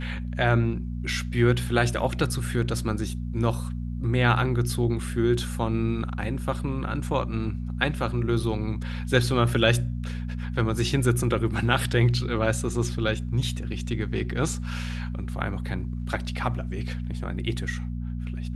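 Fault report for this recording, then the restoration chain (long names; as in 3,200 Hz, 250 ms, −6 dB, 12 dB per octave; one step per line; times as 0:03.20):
mains hum 60 Hz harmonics 4 −31 dBFS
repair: hum removal 60 Hz, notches 4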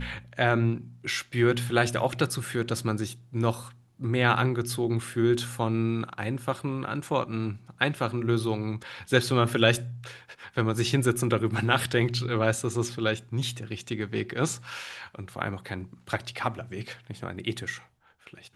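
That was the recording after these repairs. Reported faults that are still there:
none of them is left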